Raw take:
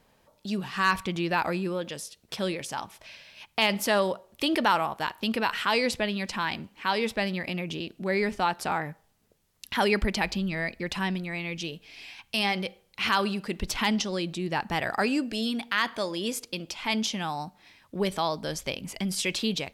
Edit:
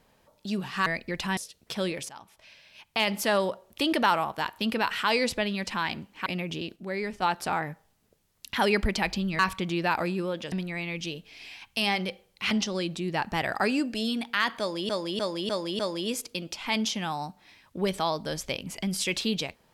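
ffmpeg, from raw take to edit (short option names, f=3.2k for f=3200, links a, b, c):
-filter_complex "[0:a]asplit=14[a][b][c][d][e][f][g][h][i][j][k][l][m][n];[a]atrim=end=0.862[o];[b]atrim=start=10.578:end=11.092[p];[c]atrim=start=1.988:end=2.71,asetpts=PTS-STARTPTS,afade=t=out:st=0.718:d=0.004:c=hsin:silence=0.199526[q];[d]atrim=start=2.71:end=6.882,asetpts=PTS-STARTPTS,afade=t=in:d=1.74:c=qsin:silence=0.199526[r];[e]atrim=start=7.448:end=7.952[s];[f]atrim=start=7.948:end=8.412,asetpts=PTS-STARTPTS,volume=-5.5dB[t];[g]atrim=start=8.408:end=10.582[u];[h]atrim=start=0.858:end=1.992[v];[i]atrim=start=11.088:end=13.082[w];[j]atrim=start=13.888:end=16.272[x];[k]atrim=start=15.968:end=16.272[y];[l]atrim=start=15.968:end=16.272[z];[m]atrim=start=15.968:end=16.272[aa];[n]atrim=start=15.968[ab];[o][p]acrossfade=d=0.004:c1=hsin:c2=hsin[ac];[q][r]concat=n=2:v=0:a=1[ad];[ac][ad]acrossfade=d=0.004:c1=hsin:c2=hsin[ae];[ae][s]acrossfade=d=0.004:c1=hsin:c2=hsin[af];[af][t]acrossfade=d=0.004:c1=hsin:c2=hsin[ag];[ag][u]acrossfade=d=0.004:c1=hsin:c2=hsin[ah];[ah][v]acrossfade=d=0.004:c1=hsin:c2=hsin[ai];[ai][w]acrossfade=d=0.004:c1=hsin:c2=hsin[aj];[aj][x]acrossfade=d=0.004:c1=hsin:c2=hsin[ak];[ak][y]acrossfade=d=0.004:c1=hsin:c2=hsin[al];[al][z]acrossfade=d=0.004:c1=hsin:c2=hsin[am];[am][aa]acrossfade=d=0.004:c1=hsin:c2=hsin[an];[an][ab]acrossfade=d=0.004:c1=hsin:c2=hsin"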